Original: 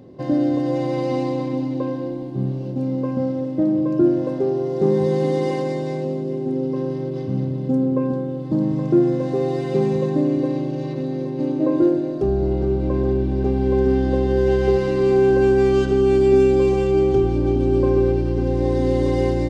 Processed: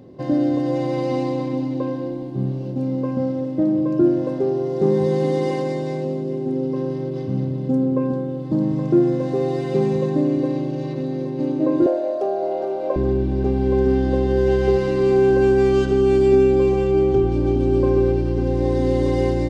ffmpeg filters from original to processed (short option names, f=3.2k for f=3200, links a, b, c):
-filter_complex "[0:a]asettb=1/sr,asplit=3[a][b][c];[a]atrim=end=11.864[d];[b]atrim=start=11.86:end=12.96,asetpts=PTS-STARTPTS,afade=t=in:d=0.004:c=qsin,afade=t=out:st=1.096:d=0.004:c=qsin,highpass=f=620:t=q:w=5[e];[c]atrim=start=12.956[f];[d][e]acrossfade=d=0.004:c1=hsin:c2=qsin[g];[g][f]acrossfade=d=0.004:c1=qsin:c2=hsin,asettb=1/sr,asplit=3[h][i][j];[h]atrim=end=16.354[k];[i]atrim=start=16.35:end=17.32,asetpts=PTS-STARTPTS,afade=t=in:d=0.004:c=qsin,afade=t=out:st=0.966:d=0.004:c=qsin,highshelf=f=3.8k:g=-6.5[l];[j]atrim=start=17.316[m];[k][l]acrossfade=d=0.004:c1=hsin:c2=qsin[n];[n][m]acrossfade=d=0.004:c1=qsin:c2=hsin"